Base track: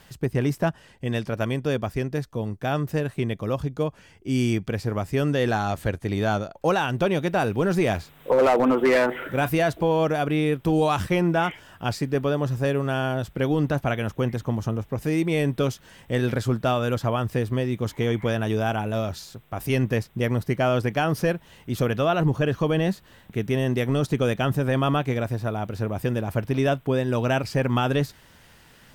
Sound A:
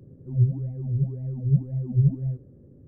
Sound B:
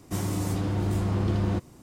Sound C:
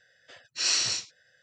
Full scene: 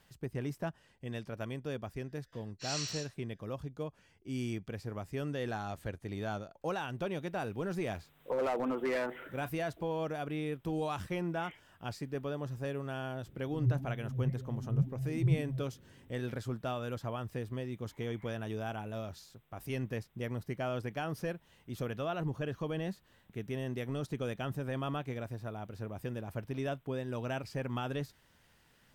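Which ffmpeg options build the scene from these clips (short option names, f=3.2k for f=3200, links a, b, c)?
-filter_complex "[0:a]volume=-14dB[a];[3:a]atrim=end=1.42,asetpts=PTS-STARTPTS,volume=-13dB,afade=t=in:d=0.004:c=hsin,afade=t=out:st=1.416:d=0.004:c=hsin,adelay=2040[b];[1:a]atrim=end=2.87,asetpts=PTS-STARTPTS,volume=-9.5dB,afade=t=in:d=0.004:c=hsin,afade=t=out:st=2.866:d=0.004:c=hsin,adelay=13260[c];[a][b][c]amix=inputs=3:normalize=0"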